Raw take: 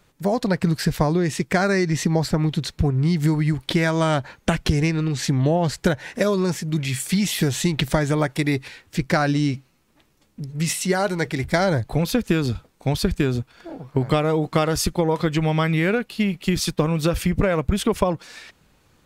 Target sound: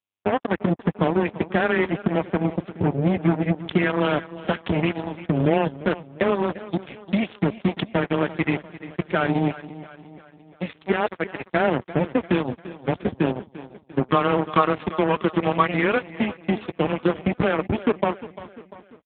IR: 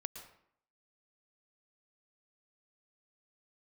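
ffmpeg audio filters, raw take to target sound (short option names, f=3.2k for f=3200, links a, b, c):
-filter_complex "[0:a]asplit=3[a][b][c];[a]afade=t=out:st=13.95:d=0.02[d];[b]equalizer=f=1.1k:w=5.7:g=13.5,afade=t=in:st=13.95:d=0.02,afade=t=out:st=16.13:d=0.02[e];[c]afade=t=in:st=16.13:d=0.02[f];[d][e][f]amix=inputs=3:normalize=0,afreqshift=13,acrusher=bits=2:mix=0:aa=0.5,aecho=1:1:347|694|1041|1388:0.158|0.0792|0.0396|0.0198" -ar 8000 -c:a libopencore_amrnb -b:a 5900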